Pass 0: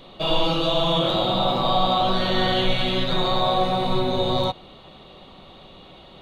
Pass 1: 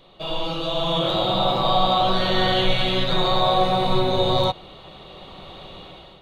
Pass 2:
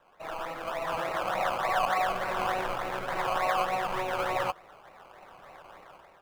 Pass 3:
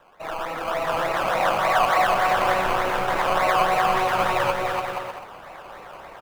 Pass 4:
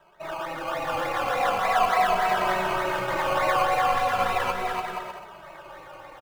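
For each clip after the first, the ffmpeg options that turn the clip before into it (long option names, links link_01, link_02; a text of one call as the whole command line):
ffmpeg -i in.wav -af "equalizer=frequency=240:width_type=o:width=0.36:gain=-7.5,dynaudnorm=framelen=340:gausssize=5:maxgain=15.5dB,volume=-6dB" out.wav
ffmpeg -i in.wav -filter_complex "[0:a]acrusher=samples=19:mix=1:aa=0.000001:lfo=1:lforange=11.4:lforate=3.4,acrossover=split=570 2600:gain=0.158 1 0.178[link_01][link_02][link_03];[link_01][link_02][link_03]amix=inputs=3:normalize=0,volume=-4.5dB" out.wav
ffmpeg -i in.wav -af "areverse,acompressor=mode=upward:threshold=-44dB:ratio=2.5,areverse,aecho=1:1:290|478.5|601|680.7|732.4:0.631|0.398|0.251|0.158|0.1,volume=6.5dB" out.wav
ffmpeg -i in.wav -filter_complex "[0:a]asplit=2[link_01][link_02];[link_02]adelay=2.7,afreqshift=-0.38[link_03];[link_01][link_03]amix=inputs=2:normalize=1" out.wav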